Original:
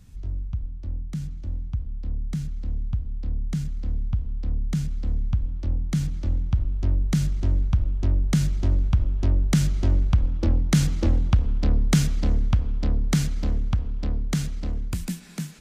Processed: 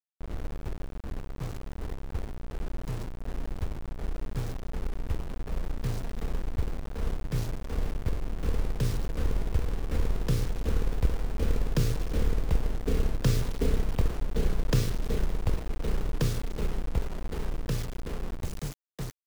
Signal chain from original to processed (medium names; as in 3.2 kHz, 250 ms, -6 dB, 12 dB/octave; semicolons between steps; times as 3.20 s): octave divider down 2 oct, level +1 dB; peaking EQ 570 Hz +14 dB 0.57 oct; tape speed -19%; bit crusher 5-bit; tape noise reduction on one side only decoder only; trim -8.5 dB